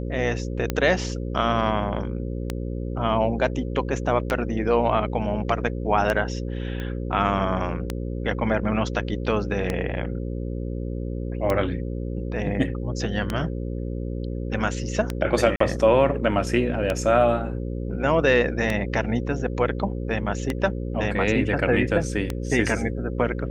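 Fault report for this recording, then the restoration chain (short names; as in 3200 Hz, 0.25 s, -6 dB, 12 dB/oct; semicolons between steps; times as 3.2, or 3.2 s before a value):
buzz 60 Hz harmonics 9 -29 dBFS
tick 33 1/3 rpm -10 dBFS
6.8 pop -20 dBFS
15.56–15.6 gap 44 ms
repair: de-click; de-hum 60 Hz, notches 9; interpolate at 15.56, 44 ms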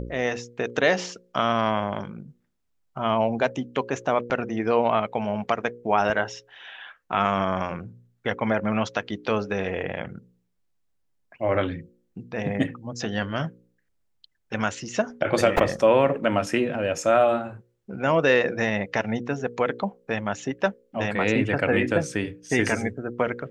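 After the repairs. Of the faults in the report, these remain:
none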